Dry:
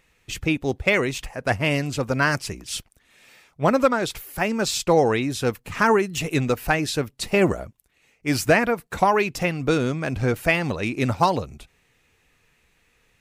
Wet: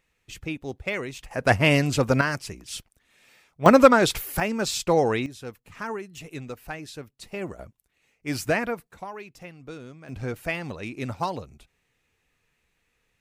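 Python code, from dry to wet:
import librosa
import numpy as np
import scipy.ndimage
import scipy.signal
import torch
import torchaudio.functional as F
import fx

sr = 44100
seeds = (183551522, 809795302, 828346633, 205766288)

y = fx.gain(x, sr, db=fx.steps((0.0, -9.5), (1.31, 3.0), (2.21, -5.5), (3.66, 5.0), (4.4, -3.0), (5.26, -14.5), (7.59, -6.5), (8.91, -19.0), (10.09, -9.0)))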